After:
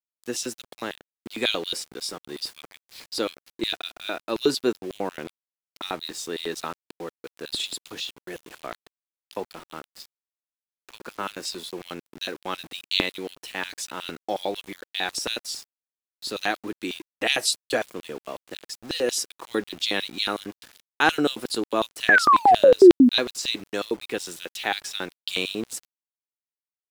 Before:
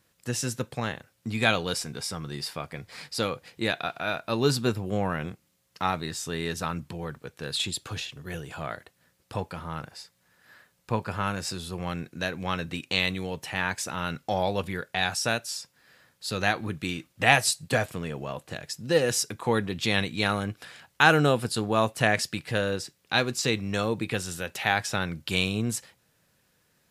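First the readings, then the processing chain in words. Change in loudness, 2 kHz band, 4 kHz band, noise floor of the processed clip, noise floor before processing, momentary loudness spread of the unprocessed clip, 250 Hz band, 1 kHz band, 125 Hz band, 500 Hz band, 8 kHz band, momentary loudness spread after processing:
+3.5 dB, +0.5 dB, +3.0 dB, under -85 dBFS, -69 dBFS, 13 LU, +5.0 dB, +3.5 dB, -14.5 dB, +4.5 dB, -0.5 dB, 20 LU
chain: painted sound fall, 22.08–23.09, 230–1800 Hz -13 dBFS; LFO high-pass square 5.5 Hz 320–3500 Hz; sample gate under -39.5 dBFS; gain -1.5 dB

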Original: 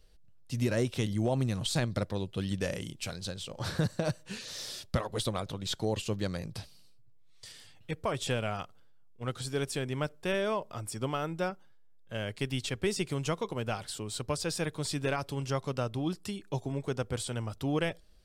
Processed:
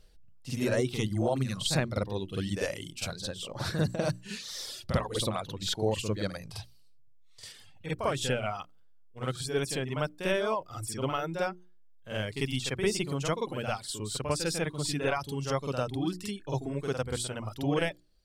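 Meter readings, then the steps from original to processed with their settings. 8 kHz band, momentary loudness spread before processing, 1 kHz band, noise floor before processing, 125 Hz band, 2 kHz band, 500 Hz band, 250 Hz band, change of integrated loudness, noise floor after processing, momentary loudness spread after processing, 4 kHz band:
+2.5 dB, 9 LU, +2.5 dB, -55 dBFS, 0.0 dB, +2.5 dB, +2.5 dB, +1.0 dB, +1.5 dB, -54 dBFS, 9 LU, +2.5 dB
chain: reverb removal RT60 1.2 s; notches 60/120/180/240/300/360 Hz; reverse echo 48 ms -7 dB; gain +2.5 dB

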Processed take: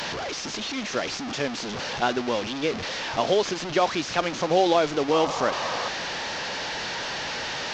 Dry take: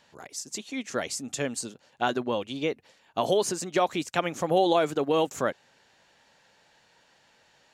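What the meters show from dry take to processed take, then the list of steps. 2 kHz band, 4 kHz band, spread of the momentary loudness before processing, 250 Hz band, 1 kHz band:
+7.5 dB, +8.0 dB, 11 LU, +2.5 dB, +4.0 dB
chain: delta modulation 32 kbps, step -27 dBFS; low shelf 130 Hz -6 dB; painted sound noise, 5.11–5.89, 460–1300 Hz -33 dBFS; gain +2.5 dB

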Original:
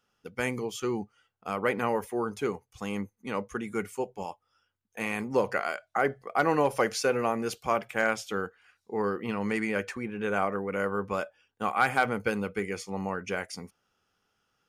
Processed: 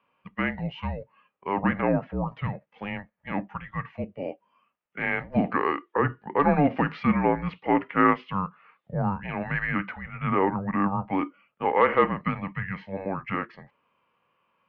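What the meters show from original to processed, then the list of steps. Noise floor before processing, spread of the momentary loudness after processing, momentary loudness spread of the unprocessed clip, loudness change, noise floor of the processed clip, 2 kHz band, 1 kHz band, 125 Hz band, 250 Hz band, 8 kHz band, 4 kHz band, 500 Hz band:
-79 dBFS, 14 LU, 10 LU, +3.5 dB, -76 dBFS, +1.0 dB, +4.0 dB, +9.0 dB, +6.0 dB, under -35 dB, -4.5 dB, +0.5 dB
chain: mistuned SSB -290 Hz 490–3200 Hz; harmonic-percussive split percussive -7 dB; gain +9 dB

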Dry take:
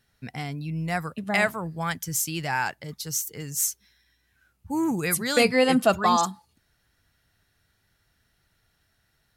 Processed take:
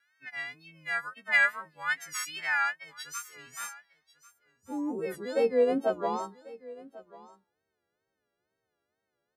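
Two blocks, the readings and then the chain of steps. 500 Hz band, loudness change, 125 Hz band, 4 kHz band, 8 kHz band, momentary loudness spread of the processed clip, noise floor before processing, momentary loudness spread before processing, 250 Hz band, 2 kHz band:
-3.5 dB, -5.0 dB, -22.0 dB, -10.5 dB, -13.0 dB, 20 LU, -70 dBFS, 12 LU, -10.0 dB, 0.0 dB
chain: frequency quantiser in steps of 3 st; one-sided clip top -13 dBFS; wow and flutter 110 cents; band-pass sweep 1700 Hz -> 440 Hz, 2.91–4.73; echo 1.093 s -20 dB

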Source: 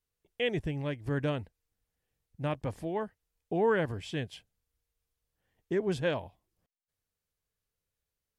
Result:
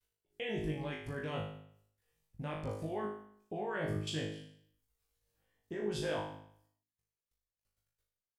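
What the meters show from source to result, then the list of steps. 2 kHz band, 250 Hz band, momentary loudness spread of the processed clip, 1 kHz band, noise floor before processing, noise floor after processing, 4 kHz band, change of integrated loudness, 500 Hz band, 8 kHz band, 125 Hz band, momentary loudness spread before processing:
-6.0 dB, -6.0 dB, 13 LU, -5.5 dB, under -85 dBFS, under -85 dBFS, -2.5 dB, -6.5 dB, -7.5 dB, +2.5 dB, -5.5 dB, 13 LU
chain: reverb removal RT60 0.67 s; de-hum 51.45 Hz, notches 8; level quantiser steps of 22 dB; flutter echo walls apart 3.3 m, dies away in 0.64 s; gain +4.5 dB

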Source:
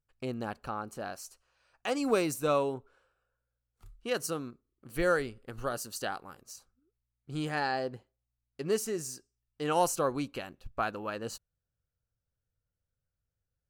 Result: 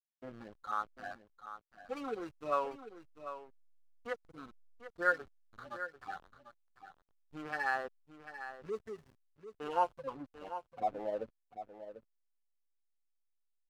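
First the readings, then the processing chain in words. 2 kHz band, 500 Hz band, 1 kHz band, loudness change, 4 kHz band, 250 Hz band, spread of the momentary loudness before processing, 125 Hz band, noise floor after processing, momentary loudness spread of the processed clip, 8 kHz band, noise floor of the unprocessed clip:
-1.0 dB, -8.5 dB, -2.5 dB, -6.0 dB, -14.5 dB, -12.5 dB, 16 LU, -17.5 dB, -80 dBFS, 21 LU, under -25 dB, under -85 dBFS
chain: median-filter separation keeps harmonic; band-pass sweep 1400 Hz -> 400 Hz, 9.71–11.86; in parallel at +0.5 dB: compressor 12:1, threshold -56 dBFS, peak gain reduction 25.5 dB; on the sum: backlash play -50 dBFS; on a send: echo 0.744 s -11.5 dB; on the sum: gain +6.5 dB

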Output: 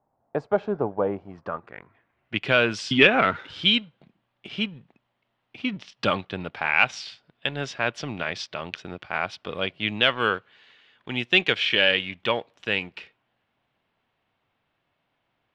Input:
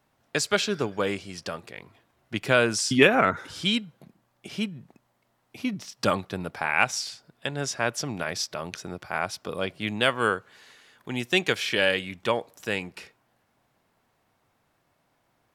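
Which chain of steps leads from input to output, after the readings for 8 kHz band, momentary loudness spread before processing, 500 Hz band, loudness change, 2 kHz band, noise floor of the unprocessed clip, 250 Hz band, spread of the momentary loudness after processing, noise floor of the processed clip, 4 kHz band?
-12.5 dB, 14 LU, 0.0 dB, +2.0 dB, +3.0 dB, -71 dBFS, -0.5 dB, 16 LU, -76 dBFS, +4.5 dB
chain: sample leveller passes 1; low-pass sweep 800 Hz -> 3100 Hz, 1.16–2.45; gain -4 dB

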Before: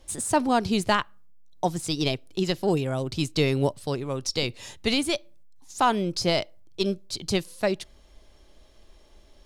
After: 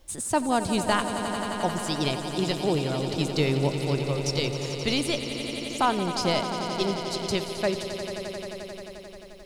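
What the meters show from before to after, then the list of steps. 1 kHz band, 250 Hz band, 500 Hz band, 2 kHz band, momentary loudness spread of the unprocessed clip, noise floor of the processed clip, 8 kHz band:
0.0 dB, -0.5 dB, 0.0 dB, 0.0 dB, 8 LU, -43 dBFS, 0.0 dB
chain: requantised 12-bit, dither triangular; swelling echo 88 ms, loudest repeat 5, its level -12 dB; gain -2 dB

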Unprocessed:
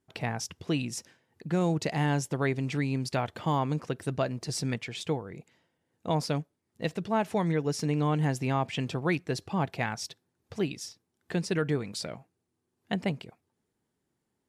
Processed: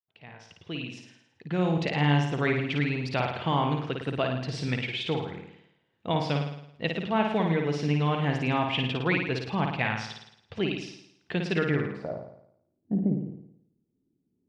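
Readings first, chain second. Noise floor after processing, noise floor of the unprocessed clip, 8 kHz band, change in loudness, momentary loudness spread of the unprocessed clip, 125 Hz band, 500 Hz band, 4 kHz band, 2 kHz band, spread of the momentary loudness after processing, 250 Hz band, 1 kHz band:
-75 dBFS, -81 dBFS, -11.5 dB, +2.5 dB, 12 LU, +2.0 dB, +2.0 dB, +4.5 dB, +5.5 dB, 13 LU, +2.0 dB, +2.5 dB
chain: opening faded in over 1.97 s; low-pass sweep 3100 Hz -> 290 Hz, 11.57–12.44; flutter echo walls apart 9.4 m, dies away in 0.73 s

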